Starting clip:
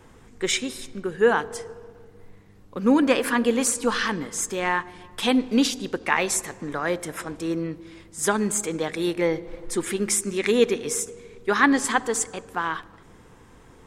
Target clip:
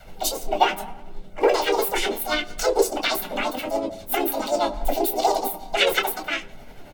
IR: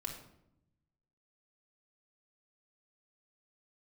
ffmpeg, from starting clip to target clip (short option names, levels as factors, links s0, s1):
-filter_complex "[0:a]adynamicequalizer=threshold=0.0126:dfrequency=150:dqfactor=1.3:tfrequency=150:tqfactor=1.3:attack=5:release=100:ratio=0.375:range=2:mode=boostabove:tftype=bell,asplit=2[s0][s1];[s1]acompressor=threshold=0.0316:ratio=6,volume=1.06[s2];[s0][s2]amix=inputs=2:normalize=0,tremolo=f=5.6:d=0.45,asplit=4[s3][s4][s5][s6];[s4]asetrate=29433,aresample=44100,atempo=1.49831,volume=0.316[s7];[s5]asetrate=37084,aresample=44100,atempo=1.18921,volume=1[s8];[s6]asetrate=55563,aresample=44100,atempo=0.793701,volume=0.282[s9];[s3][s7][s8][s9]amix=inputs=4:normalize=0,flanger=delay=2.6:depth=8.9:regen=53:speed=0.38:shape=triangular[s10];[1:a]atrim=start_sample=2205,atrim=end_sample=3087[s11];[s10][s11]afir=irnorm=-1:irlink=0,asetrate=88200,aresample=44100,volume=1.19"